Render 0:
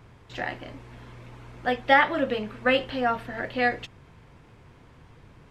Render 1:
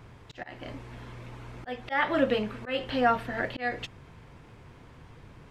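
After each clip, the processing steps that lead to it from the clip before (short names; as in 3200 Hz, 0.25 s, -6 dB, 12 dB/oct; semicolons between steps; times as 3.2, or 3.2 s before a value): auto swell 0.261 s; gain +1.5 dB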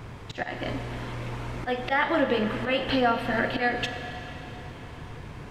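compressor 3:1, threshold -32 dBFS, peak gain reduction 10.5 dB; Schroeder reverb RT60 3.7 s, combs from 30 ms, DRR 7 dB; gain +9 dB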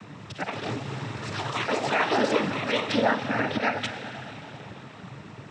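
echoes that change speed 0.19 s, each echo +6 st, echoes 3, each echo -6 dB; noise vocoder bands 12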